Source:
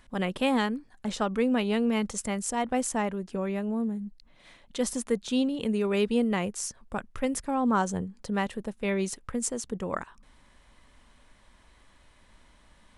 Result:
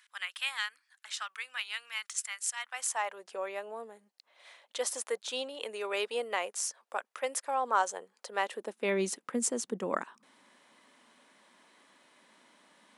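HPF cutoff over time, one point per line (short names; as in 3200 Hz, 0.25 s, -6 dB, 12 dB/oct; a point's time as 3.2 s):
HPF 24 dB/oct
2.61 s 1400 Hz
3.24 s 520 Hz
8.29 s 520 Hz
9 s 220 Hz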